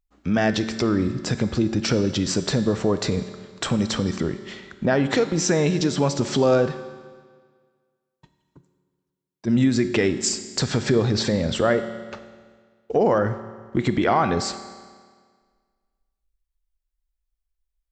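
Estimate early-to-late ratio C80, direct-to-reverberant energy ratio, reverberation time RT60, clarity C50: 12.0 dB, 10.0 dB, 1.7 s, 11.0 dB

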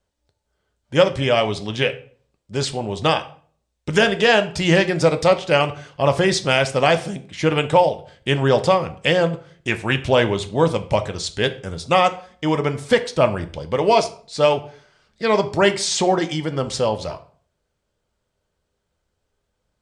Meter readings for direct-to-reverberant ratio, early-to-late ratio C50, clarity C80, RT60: 8.0 dB, 15.0 dB, 20.0 dB, 0.45 s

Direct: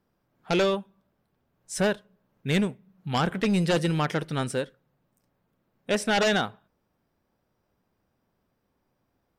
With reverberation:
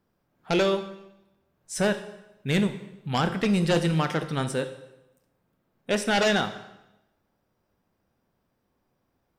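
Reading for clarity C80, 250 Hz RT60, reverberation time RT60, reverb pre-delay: 14.0 dB, 1.0 s, 0.90 s, 15 ms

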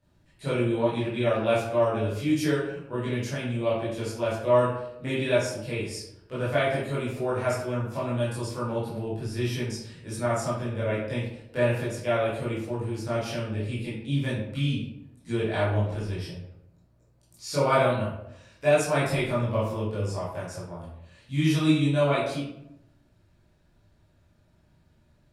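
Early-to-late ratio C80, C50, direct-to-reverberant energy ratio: 5.5 dB, 1.5 dB, -10.0 dB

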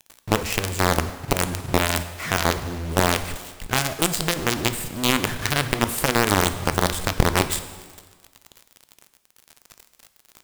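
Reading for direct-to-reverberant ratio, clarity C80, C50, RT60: 10.0 dB, 13.5 dB, 12.0 dB, 1.5 s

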